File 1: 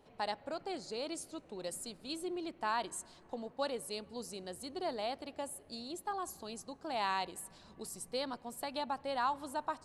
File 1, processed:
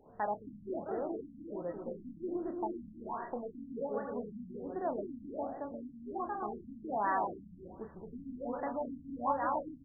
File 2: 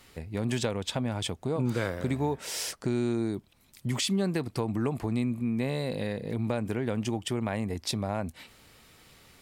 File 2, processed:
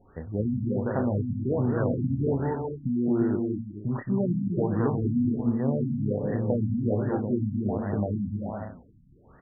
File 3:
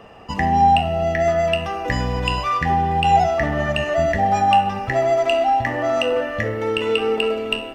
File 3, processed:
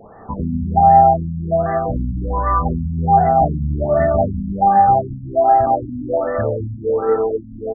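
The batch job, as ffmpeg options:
-filter_complex "[0:a]asplit=2[s0][s1];[s1]adelay=29,volume=0.447[s2];[s0][s2]amix=inputs=2:normalize=0,aecho=1:1:220|352|431.2|478.7|507.2:0.631|0.398|0.251|0.158|0.1,afftfilt=real='re*lt(b*sr/1024,270*pow(2000/270,0.5+0.5*sin(2*PI*1.3*pts/sr)))':imag='im*lt(b*sr/1024,270*pow(2000/270,0.5+0.5*sin(2*PI*1.3*pts/sr)))':win_size=1024:overlap=0.75,volume=1.26"

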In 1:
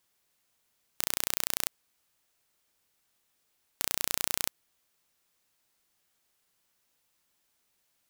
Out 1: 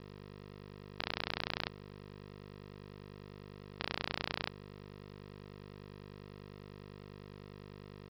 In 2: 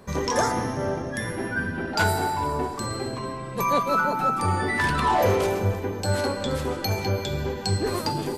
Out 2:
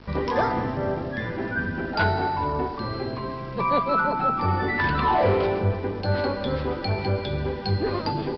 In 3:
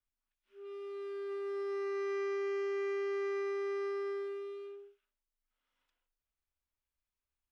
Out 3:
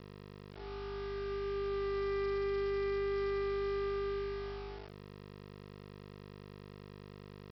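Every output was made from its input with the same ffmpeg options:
-af "aeval=exprs='val(0)+0.00447*(sin(2*PI*50*n/s)+sin(2*PI*2*50*n/s)/2+sin(2*PI*3*50*n/s)/3+sin(2*PI*4*50*n/s)/4+sin(2*PI*5*50*n/s)/5)':c=same,aemphasis=mode=reproduction:type=cd,acontrast=37,aresample=11025,aeval=exprs='val(0)*gte(abs(val(0)),0.0119)':c=same,aresample=44100,volume=0.562"

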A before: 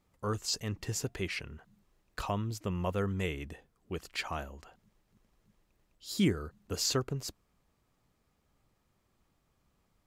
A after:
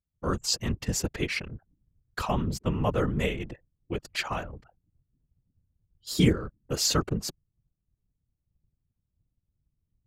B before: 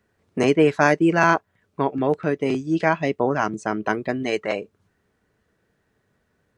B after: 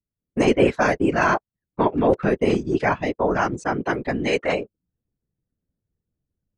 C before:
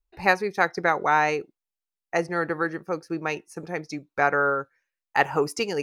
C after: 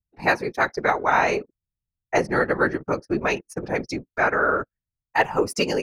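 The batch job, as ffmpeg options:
-af "anlmdn=0.0251,dynaudnorm=f=160:g=3:m=2.99,afftfilt=real='hypot(re,im)*cos(2*PI*random(0))':imag='hypot(re,im)*sin(2*PI*random(1))':win_size=512:overlap=0.75,volume=1.33"

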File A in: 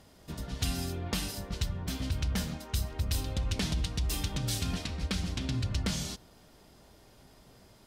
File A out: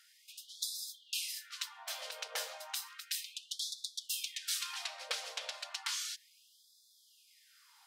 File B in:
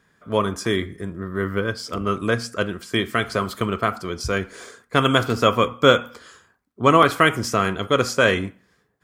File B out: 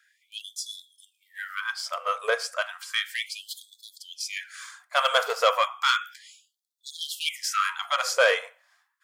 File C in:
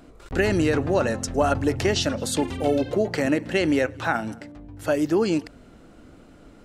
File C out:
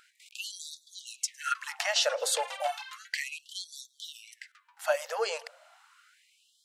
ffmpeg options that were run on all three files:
-af "asoftclip=type=tanh:threshold=0.316,afftfilt=real='re*gte(b*sr/1024,430*pow(3400/430,0.5+0.5*sin(2*PI*0.33*pts/sr)))':imag='im*gte(b*sr/1024,430*pow(3400/430,0.5+0.5*sin(2*PI*0.33*pts/sr)))':win_size=1024:overlap=0.75"

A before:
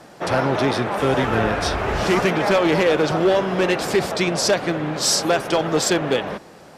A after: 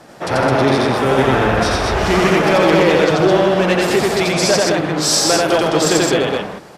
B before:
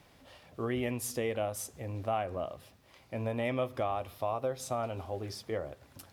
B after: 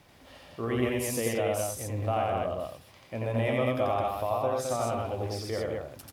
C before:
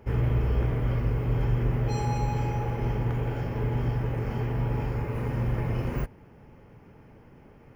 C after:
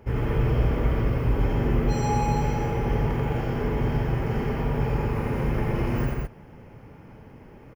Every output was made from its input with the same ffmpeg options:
-af "aecho=1:1:87.46|157.4|212.8:0.891|0.355|0.708,volume=1.19"

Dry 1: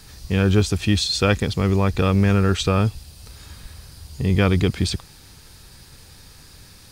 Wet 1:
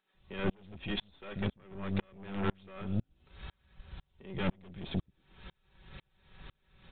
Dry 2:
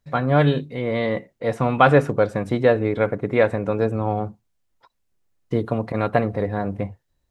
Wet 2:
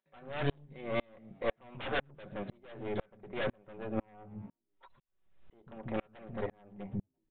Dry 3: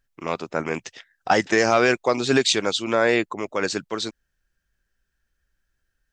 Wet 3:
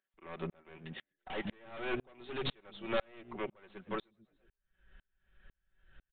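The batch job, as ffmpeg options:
-filter_complex "[0:a]aecho=1:1:5.3:0.58,acrossover=split=230[s0][s1];[s0]adelay=140[s2];[s2][s1]amix=inputs=2:normalize=0,acompressor=mode=upward:threshold=0.0141:ratio=2.5,aeval=exprs='0.944*(cos(1*acos(clip(val(0)/0.944,-1,1)))-cos(1*PI/2))+0.0841*(cos(3*acos(clip(val(0)/0.944,-1,1)))-cos(3*PI/2))':c=same,aeval=exprs='(mod(2.99*val(0)+1,2)-1)/2.99':c=same,aeval=exprs='0.335*(cos(1*acos(clip(val(0)/0.335,-1,1)))-cos(1*PI/2))+0.119*(cos(5*acos(clip(val(0)/0.335,-1,1)))-cos(5*PI/2))+0.075*(cos(8*acos(clip(val(0)/0.335,-1,1)))-cos(8*PI/2))':c=same,alimiter=limit=0.2:level=0:latency=1:release=294,asplit=2[s3][s4];[s4]asplit=3[s5][s6][s7];[s5]adelay=113,afreqshift=64,volume=0.0708[s8];[s6]adelay=226,afreqshift=128,volume=0.0367[s9];[s7]adelay=339,afreqshift=192,volume=0.0191[s10];[s8][s9][s10]amix=inputs=3:normalize=0[s11];[s3][s11]amix=inputs=2:normalize=0,aresample=8000,aresample=44100,aeval=exprs='val(0)*pow(10,-38*if(lt(mod(-2*n/s,1),2*abs(-2)/1000),1-mod(-2*n/s,1)/(2*abs(-2)/1000),(mod(-2*n/s,1)-2*abs(-2)/1000)/(1-2*abs(-2)/1000))/20)':c=same,volume=0.501"

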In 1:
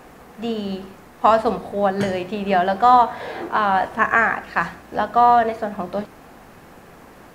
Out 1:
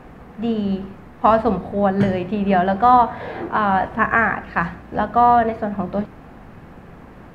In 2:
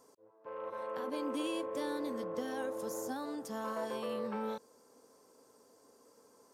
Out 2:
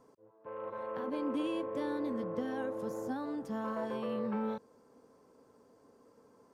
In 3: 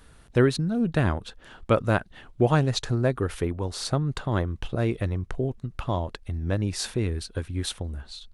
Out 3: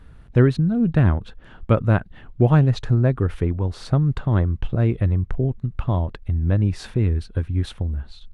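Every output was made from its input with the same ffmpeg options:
-af "bass=f=250:g=9,treble=f=4000:g=-13"

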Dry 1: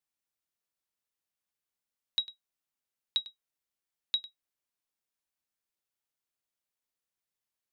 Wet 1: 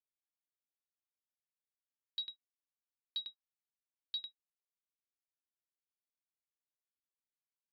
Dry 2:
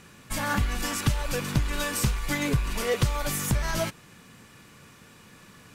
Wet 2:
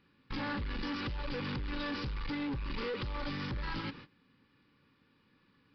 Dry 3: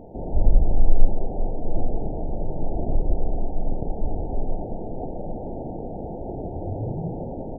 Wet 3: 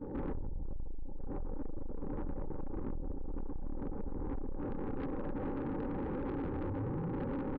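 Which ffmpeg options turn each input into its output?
-af "agate=range=0.1:threshold=0.00501:ratio=16:detection=peak,equalizer=f=280:t=o:w=0.34:g=9.5,acompressor=threshold=0.0447:ratio=12,aresample=16000,asoftclip=type=tanh:threshold=0.0178,aresample=44100,asuperstop=centerf=670:order=12:qfactor=4.3,aresample=11025,aresample=44100,volume=1.19"

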